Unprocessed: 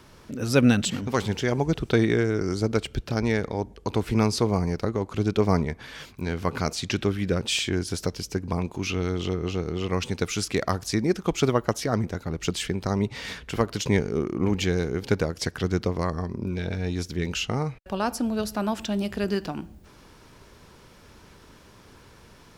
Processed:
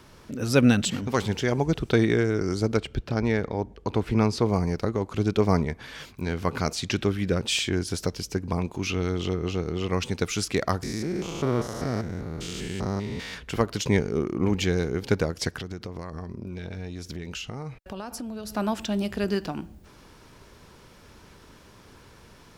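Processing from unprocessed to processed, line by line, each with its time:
2.77–4.46 s: treble shelf 5.6 kHz -11.5 dB
10.83–13.34 s: spectrogram pixelated in time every 200 ms
15.56–18.50 s: compression 12:1, threshold -31 dBFS

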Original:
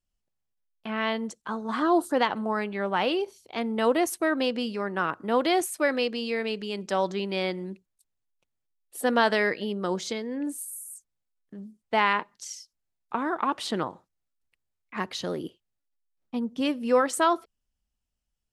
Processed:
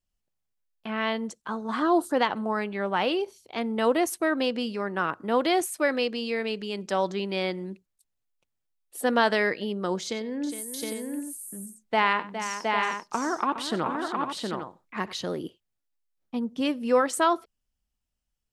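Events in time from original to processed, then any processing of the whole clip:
10.02–15.13 s: multi-tap echo 96/412/716/803 ms -17/-10/-3.5/-8.5 dB

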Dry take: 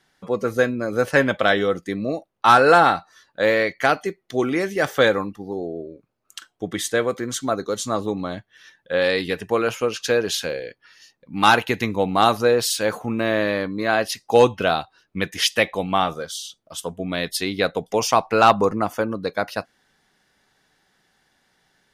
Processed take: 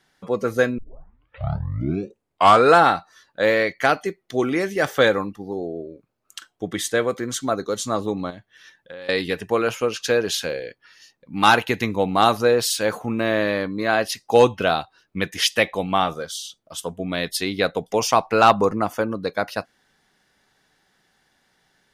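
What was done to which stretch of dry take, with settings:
0.78 s: tape start 2.00 s
8.30–9.09 s: compression, threshold -35 dBFS

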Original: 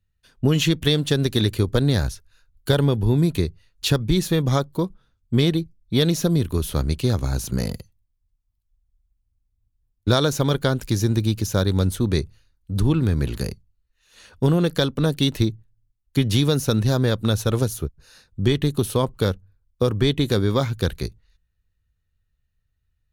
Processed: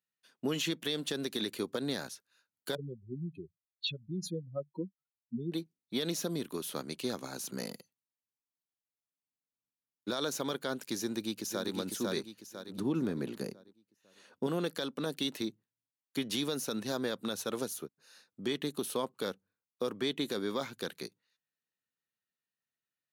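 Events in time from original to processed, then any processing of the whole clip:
2.75–5.52 s: spectral contrast enhancement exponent 3.6
11.00–11.72 s: echo throw 500 ms, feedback 40%, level -4.5 dB
12.78–14.47 s: tilt shelf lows +5.5 dB
whole clip: high-pass 220 Hz 24 dB/octave; peaking EQ 330 Hz -3 dB 1.8 oct; peak limiter -14.5 dBFS; trim -8 dB

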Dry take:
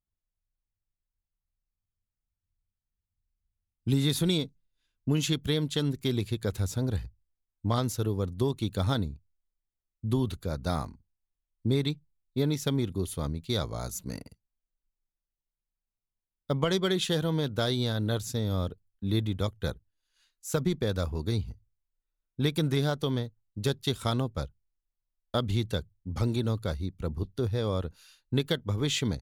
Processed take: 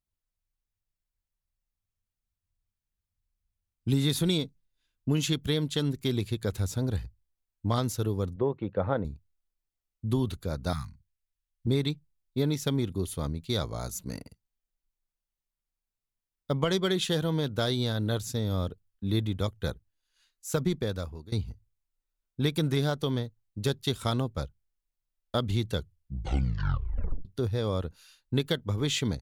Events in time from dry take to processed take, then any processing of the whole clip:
8.36–9.05 s: cabinet simulation 110–2100 Hz, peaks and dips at 120 Hz -5 dB, 250 Hz -5 dB, 520 Hz +10 dB, 800 Hz +3 dB
10.73–11.67 s: Chebyshev band-stop 140–1600 Hz
20.74–21.32 s: fade out, to -20.5 dB
25.73 s: tape stop 1.52 s

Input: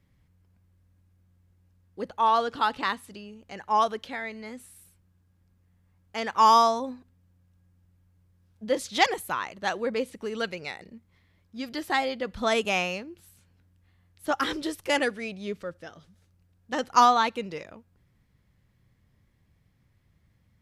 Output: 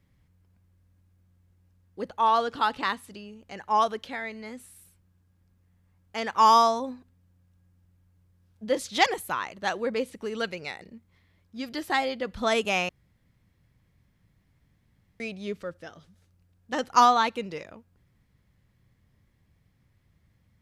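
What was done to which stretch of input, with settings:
12.89–15.20 s: room tone

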